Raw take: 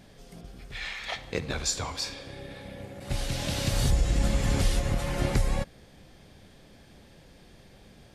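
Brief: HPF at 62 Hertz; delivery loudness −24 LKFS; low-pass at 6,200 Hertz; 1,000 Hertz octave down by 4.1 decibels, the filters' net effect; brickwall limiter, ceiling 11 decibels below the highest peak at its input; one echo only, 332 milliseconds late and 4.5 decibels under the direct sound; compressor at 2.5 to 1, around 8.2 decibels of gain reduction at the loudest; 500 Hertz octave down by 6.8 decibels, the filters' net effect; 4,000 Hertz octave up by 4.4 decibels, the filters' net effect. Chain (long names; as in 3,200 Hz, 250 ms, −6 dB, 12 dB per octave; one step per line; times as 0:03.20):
high-pass filter 62 Hz
low-pass filter 6,200 Hz
parametric band 500 Hz −7.5 dB
parametric band 1,000 Hz −3 dB
parametric band 4,000 Hz +6.5 dB
downward compressor 2.5 to 1, threshold −36 dBFS
brickwall limiter −29 dBFS
single-tap delay 332 ms −4.5 dB
level +14.5 dB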